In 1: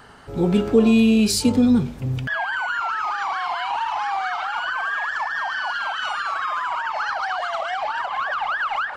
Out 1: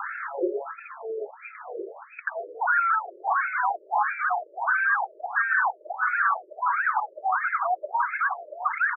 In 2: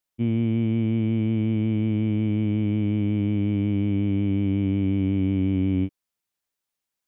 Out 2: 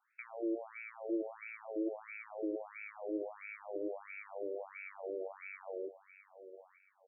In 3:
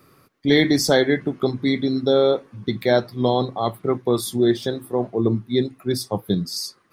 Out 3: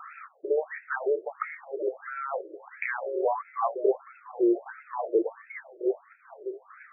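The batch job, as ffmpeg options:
-af "apsyclip=18dB,acompressor=threshold=-20dB:ratio=6,aecho=1:1:903|1806|2709:0.237|0.0806|0.0274,afftfilt=real='re*between(b*sr/1024,430*pow(1900/430,0.5+0.5*sin(2*PI*1.5*pts/sr))/1.41,430*pow(1900/430,0.5+0.5*sin(2*PI*1.5*pts/sr))*1.41)':imag='im*between(b*sr/1024,430*pow(1900/430,0.5+0.5*sin(2*PI*1.5*pts/sr))/1.41,430*pow(1900/430,0.5+0.5*sin(2*PI*1.5*pts/sr))*1.41)':win_size=1024:overlap=0.75"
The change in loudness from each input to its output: −4.0, −18.5, −9.0 LU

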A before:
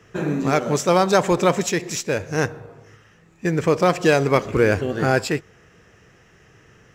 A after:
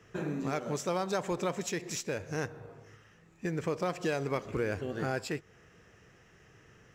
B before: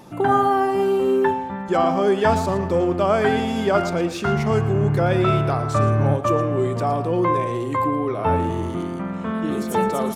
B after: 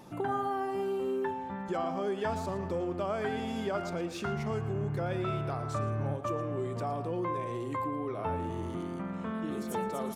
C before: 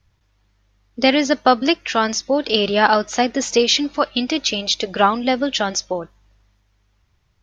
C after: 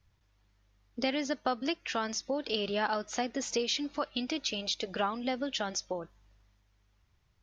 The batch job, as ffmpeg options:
-af "acompressor=threshold=-28dB:ratio=2,volume=-7dB"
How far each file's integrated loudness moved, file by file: −14.0, −13.5, −15.0 LU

